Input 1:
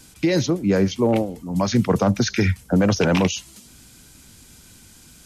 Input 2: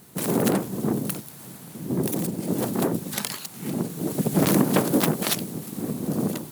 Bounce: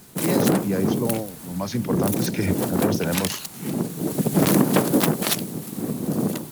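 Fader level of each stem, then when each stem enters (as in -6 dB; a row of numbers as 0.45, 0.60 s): -7.0, +2.0 dB; 0.00, 0.00 s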